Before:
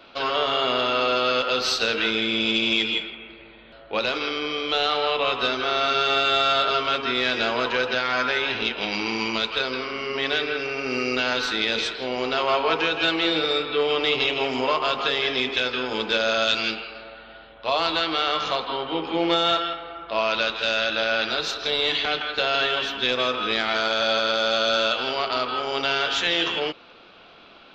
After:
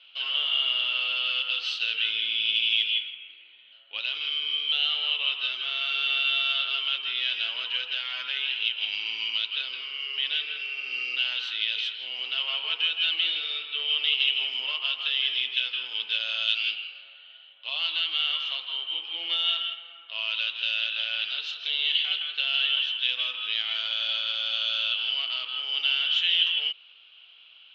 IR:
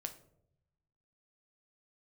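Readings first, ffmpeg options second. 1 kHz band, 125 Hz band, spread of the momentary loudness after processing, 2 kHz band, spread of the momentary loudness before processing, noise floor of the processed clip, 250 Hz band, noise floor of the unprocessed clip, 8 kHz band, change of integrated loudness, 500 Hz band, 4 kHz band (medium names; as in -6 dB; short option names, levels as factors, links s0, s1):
-19.5 dB, under -35 dB, 7 LU, -4.5 dB, 6 LU, -53 dBFS, under -30 dB, -48 dBFS, under -15 dB, -2.5 dB, -27.5 dB, +1.0 dB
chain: -af "bandpass=f=3000:t=q:w=11:csg=0,acontrast=52,volume=1.26"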